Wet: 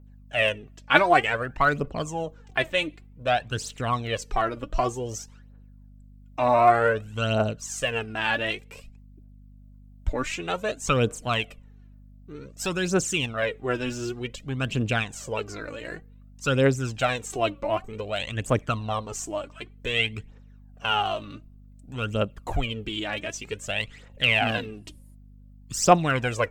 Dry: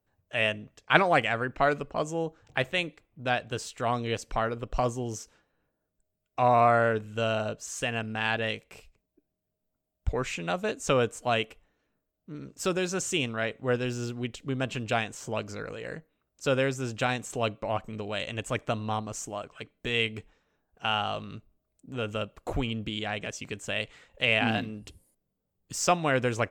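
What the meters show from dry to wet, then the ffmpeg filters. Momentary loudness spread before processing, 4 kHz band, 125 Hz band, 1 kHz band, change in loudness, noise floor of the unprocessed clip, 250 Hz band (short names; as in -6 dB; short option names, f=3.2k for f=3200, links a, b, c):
13 LU, +3.5 dB, +4.0 dB, +3.5 dB, +3.5 dB, -82 dBFS, +2.5 dB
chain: -af "aphaser=in_gain=1:out_gain=1:delay=3.6:decay=0.64:speed=0.54:type=triangular,aeval=exprs='val(0)+0.00355*(sin(2*PI*50*n/s)+sin(2*PI*2*50*n/s)/2+sin(2*PI*3*50*n/s)/3+sin(2*PI*4*50*n/s)/4+sin(2*PI*5*50*n/s)/5)':c=same,volume=1dB"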